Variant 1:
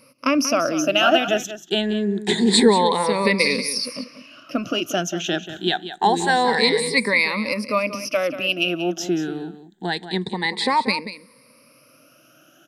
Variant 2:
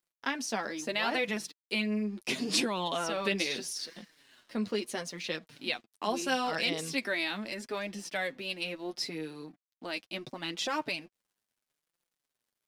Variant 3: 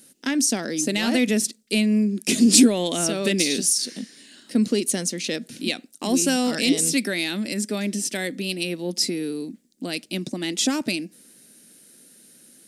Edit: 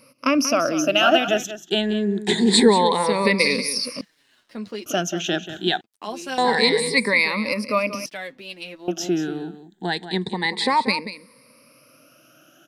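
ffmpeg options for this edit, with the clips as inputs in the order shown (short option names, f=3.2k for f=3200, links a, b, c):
-filter_complex "[1:a]asplit=3[a][b][c];[0:a]asplit=4[d][e][f][g];[d]atrim=end=4.012[h];[a]atrim=start=4.008:end=4.862[i];[e]atrim=start=4.858:end=5.812[j];[b]atrim=start=5.808:end=6.382[k];[f]atrim=start=6.378:end=8.062[l];[c]atrim=start=8.058:end=8.882[m];[g]atrim=start=8.878[n];[h][i]acrossfade=d=0.004:c1=hsin:c2=hsin[o];[o][j]acrossfade=d=0.004:c1=hsin:c2=hsin[p];[p][k]acrossfade=d=0.004:c1=hsin:c2=hsin[q];[q][l]acrossfade=d=0.004:c1=hsin:c2=hsin[r];[r][m]acrossfade=d=0.004:c1=hsin:c2=hsin[s];[s][n]acrossfade=d=0.004:c1=hsin:c2=hsin"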